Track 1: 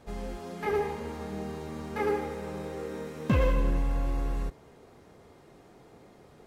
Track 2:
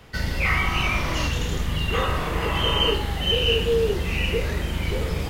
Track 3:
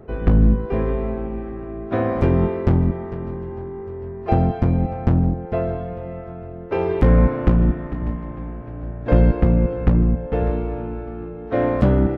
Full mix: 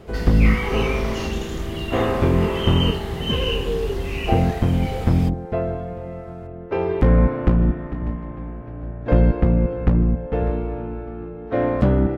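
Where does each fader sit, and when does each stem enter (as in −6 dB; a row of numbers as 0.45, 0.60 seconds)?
−1.5, −4.5, −1.0 decibels; 0.00, 0.00, 0.00 seconds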